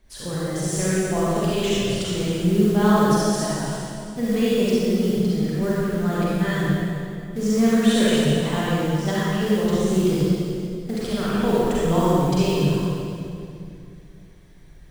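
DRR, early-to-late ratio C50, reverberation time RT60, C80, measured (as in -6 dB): -8.5 dB, -6.5 dB, 2.5 s, -3.5 dB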